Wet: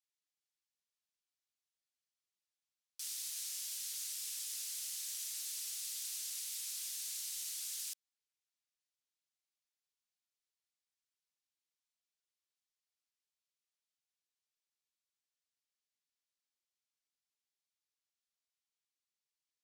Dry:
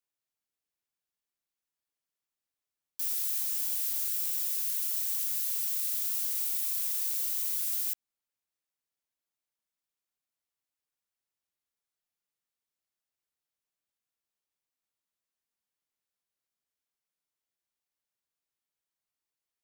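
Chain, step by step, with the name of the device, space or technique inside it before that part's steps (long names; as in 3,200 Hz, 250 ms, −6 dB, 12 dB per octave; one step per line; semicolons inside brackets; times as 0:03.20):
piezo pickup straight into a mixer (low-pass filter 5,200 Hz 12 dB per octave; first difference)
level +5.5 dB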